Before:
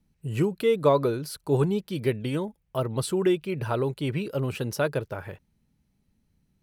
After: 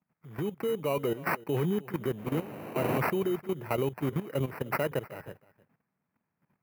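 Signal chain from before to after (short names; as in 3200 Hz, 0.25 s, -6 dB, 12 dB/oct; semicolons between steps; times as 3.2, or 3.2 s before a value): 1.88–2.97 wind noise 610 Hz -34 dBFS; resonant high shelf 3900 Hz +9.5 dB, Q 3; sample-and-hold 13×; HPF 120 Hz 24 dB/oct; level quantiser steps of 14 dB; band shelf 5500 Hz -15 dB; echo 0.307 s -20.5 dB; AGC gain up to 5 dB; gain -4.5 dB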